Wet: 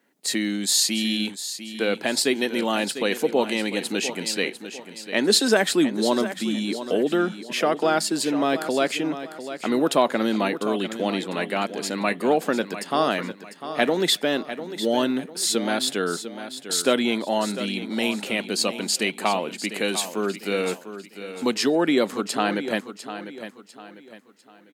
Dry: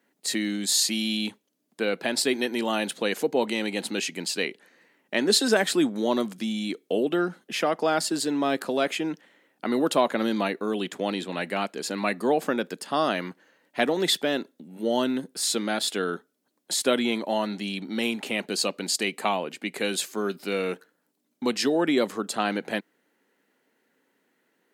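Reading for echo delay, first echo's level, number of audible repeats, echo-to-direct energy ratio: 0.699 s, -11.5 dB, 3, -11.0 dB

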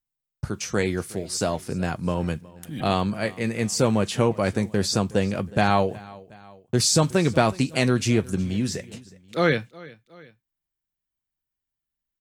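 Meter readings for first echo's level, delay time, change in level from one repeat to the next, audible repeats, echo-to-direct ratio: -21.5 dB, 0.366 s, -5.5 dB, 2, -20.5 dB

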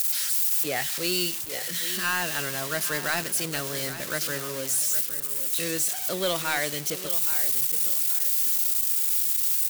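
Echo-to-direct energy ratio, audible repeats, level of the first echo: -11.5 dB, 3, -12.0 dB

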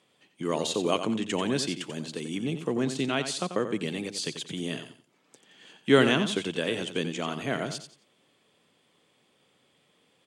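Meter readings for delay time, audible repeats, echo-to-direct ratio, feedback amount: 89 ms, 3, -9.0 dB, 26%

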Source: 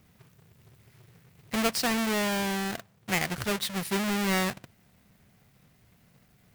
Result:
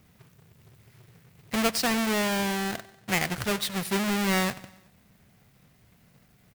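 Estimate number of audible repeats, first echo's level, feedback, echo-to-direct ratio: 3, -20.0 dB, 56%, -18.5 dB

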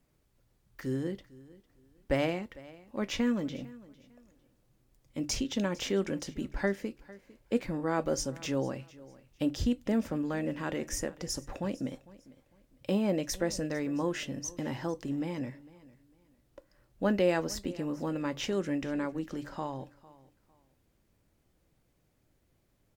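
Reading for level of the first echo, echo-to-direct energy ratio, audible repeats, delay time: -20.5 dB, -20.0 dB, 2, 0.452 s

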